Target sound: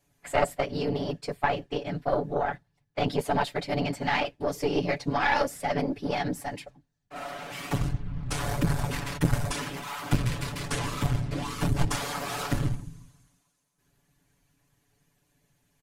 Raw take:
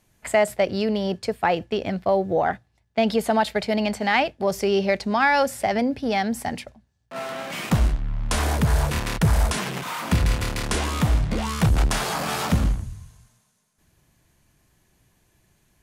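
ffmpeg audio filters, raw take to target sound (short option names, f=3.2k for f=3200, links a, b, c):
-af "afftfilt=real='hypot(re,im)*cos(2*PI*random(0))':imag='hypot(re,im)*sin(2*PI*random(1))':win_size=512:overlap=0.75,aecho=1:1:7:0.81,aeval=exprs='0.376*(cos(1*acos(clip(val(0)/0.376,-1,1)))-cos(1*PI/2))+0.168*(cos(2*acos(clip(val(0)/0.376,-1,1)))-cos(2*PI/2))':c=same,volume=-2.5dB"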